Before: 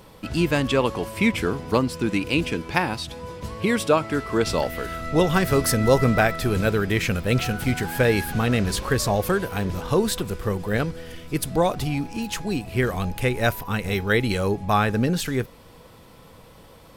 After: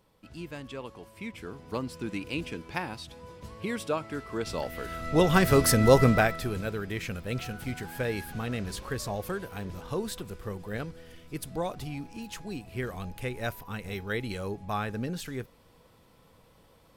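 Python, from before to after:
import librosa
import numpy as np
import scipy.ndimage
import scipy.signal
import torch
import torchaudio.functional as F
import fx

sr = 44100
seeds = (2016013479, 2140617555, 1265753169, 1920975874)

y = fx.gain(x, sr, db=fx.line((1.3, -19.0), (1.88, -11.0), (4.45, -11.0), (5.39, -1.0), (6.04, -1.0), (6.63, -11.5)))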